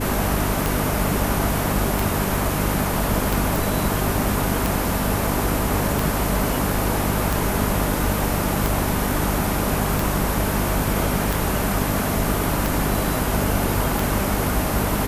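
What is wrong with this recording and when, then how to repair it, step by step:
mains hum 50 Hz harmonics 6 −26 dBFS
scratch tick 45 rpm
0:03.56: click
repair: click removal
hum removal 50 Hz, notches 6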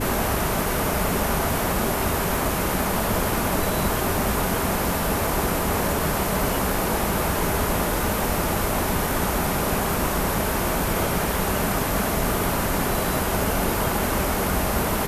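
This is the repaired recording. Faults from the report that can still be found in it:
none of them is left

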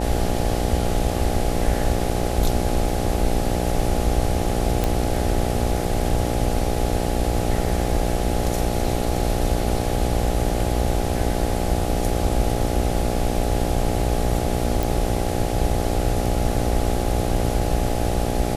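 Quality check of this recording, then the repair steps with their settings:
mains buzz 60 Hz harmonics 14 −25 dBFS
0:04.84: click
0:14.83: click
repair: click removal
hum removal 60 Hz, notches 14

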